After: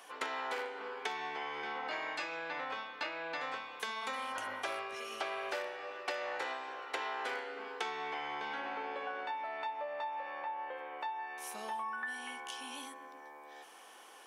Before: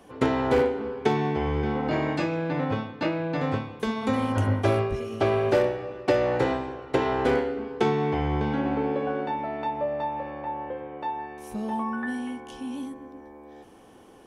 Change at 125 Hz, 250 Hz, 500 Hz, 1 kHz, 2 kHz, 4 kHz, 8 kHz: below −35 dB, −26.0 dB, −17.5 dB, −8.5 dB, −4.0 dB, −3.5 dB, can't be measured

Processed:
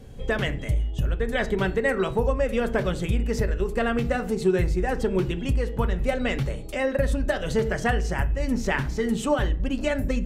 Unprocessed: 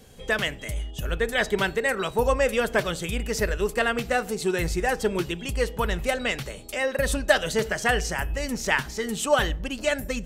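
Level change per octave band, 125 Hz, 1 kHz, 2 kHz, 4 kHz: +6.0, −2.5, −4.0, −6.5 decibels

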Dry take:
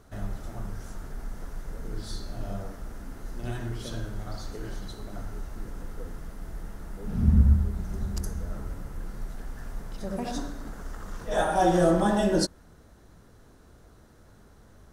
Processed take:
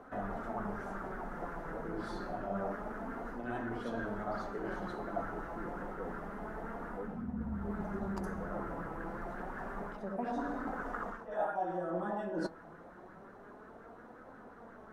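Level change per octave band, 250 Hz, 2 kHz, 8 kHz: −8.0 dB, −3.0 dB, below −20 dB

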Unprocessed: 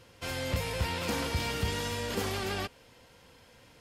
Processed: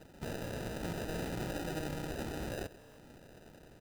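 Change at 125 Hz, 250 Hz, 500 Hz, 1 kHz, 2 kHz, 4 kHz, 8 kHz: −6.5, −2.5, −5.0, −8.5, −9.5, −13.0, −9.5 decibels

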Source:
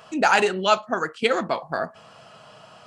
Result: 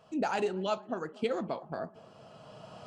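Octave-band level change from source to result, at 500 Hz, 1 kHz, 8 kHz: −9.5 dB, −13.5 dB, below −15 dB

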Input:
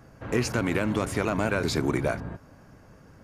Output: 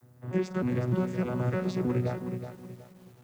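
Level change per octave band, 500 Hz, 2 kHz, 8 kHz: −4.0 dB, −11.5 dB, below −15 dB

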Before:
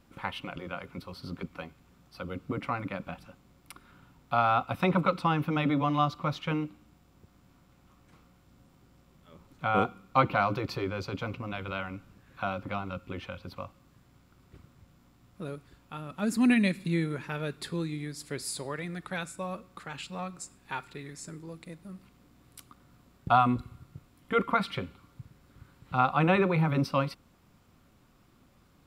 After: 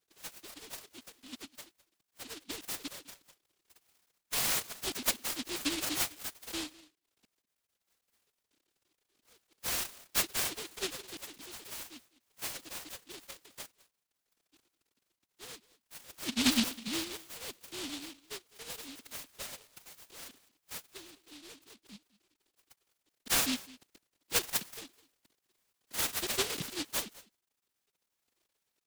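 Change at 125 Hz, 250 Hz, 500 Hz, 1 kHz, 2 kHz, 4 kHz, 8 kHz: −21.0, −10.0, −13.0, −17.0, −5.5, +6.0, +11.0 decibels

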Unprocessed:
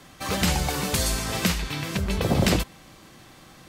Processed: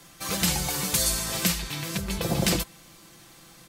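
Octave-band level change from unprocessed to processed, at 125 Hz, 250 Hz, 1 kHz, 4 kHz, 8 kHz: −4.5, −3.5, −4.5, 0.0, +3.5 decibels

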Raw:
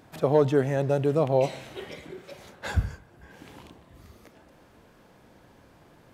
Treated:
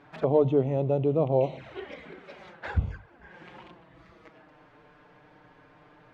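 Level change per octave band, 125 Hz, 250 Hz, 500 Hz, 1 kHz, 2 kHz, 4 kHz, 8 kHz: −1.0 dB, −0.5 dB, −1.0 dB, −3.0 dB, −4.5 dB, −7.5 dB, below −15 dB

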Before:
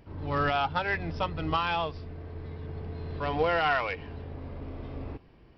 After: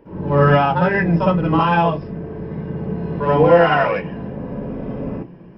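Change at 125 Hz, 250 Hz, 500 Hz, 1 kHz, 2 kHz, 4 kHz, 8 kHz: +15.5 dB, +18.0 dB, +15.5 dB, +11.0 dB, +9.0 dB, +4.0 dB, can't be measured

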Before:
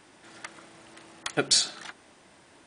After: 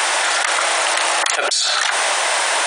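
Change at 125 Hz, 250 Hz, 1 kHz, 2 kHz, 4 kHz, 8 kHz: below −20 dB, +0.5 dB, +24.0 dB, +22.0 dB, +12.0 dB, +13.0 dB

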